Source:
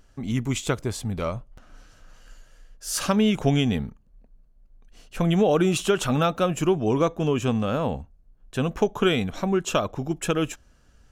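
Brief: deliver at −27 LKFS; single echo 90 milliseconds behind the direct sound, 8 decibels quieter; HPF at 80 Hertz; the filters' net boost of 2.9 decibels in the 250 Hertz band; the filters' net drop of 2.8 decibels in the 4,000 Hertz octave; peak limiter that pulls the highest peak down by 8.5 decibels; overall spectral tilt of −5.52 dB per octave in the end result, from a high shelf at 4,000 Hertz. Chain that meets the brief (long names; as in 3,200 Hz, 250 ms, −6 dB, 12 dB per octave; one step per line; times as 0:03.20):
high-pass filter 80 Hz
parametric band 250 Hz +4 dB
high-shelf EQ 4,000 Hz +4.5 dB
parametric band 4,000 Hz −6.5 dB
brickwall limiter −16 dBFS
single-tap delay 90 ms −8 dB
level −1 dB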